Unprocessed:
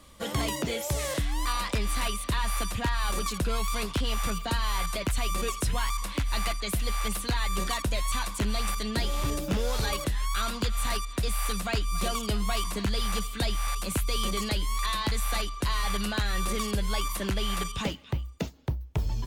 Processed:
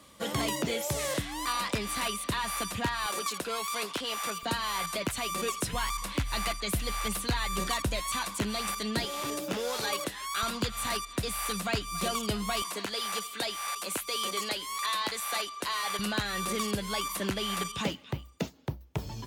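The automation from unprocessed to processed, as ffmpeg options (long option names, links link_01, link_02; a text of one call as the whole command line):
ffmpeg -i in.wav -af "asetnsamples=nb_out_samples=441:pad=0,asendcmd='3.06 highpass f 360;4.43 highpass f 150;5.73 highpass f 58;8 highpass f 120;9.05 highpass f 280;10.43 highpass f 100;12.62 highpass f 390;15.99 highpass f 130',highpass=120" out.wav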